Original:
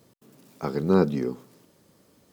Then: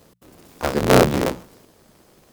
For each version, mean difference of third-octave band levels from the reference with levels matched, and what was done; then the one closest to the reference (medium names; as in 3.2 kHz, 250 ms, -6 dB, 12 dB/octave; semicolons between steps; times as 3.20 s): 7.0 dB: cycle switcher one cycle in 3, inverted; hum notches 60/120/180 Hz; trim +6.5 dB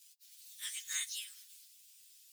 23.0 dB: frequency axis rescaled in octaves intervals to 119%; inverse Chebyshev high-pass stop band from 560 Hz, stop band 80 dB; trim +14 dB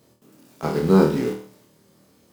4.0 dB: in parallel at -9.5 dB: bit crusher 5-bit; on the sum: flutter echo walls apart 4.4 m, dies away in 0.42 s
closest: third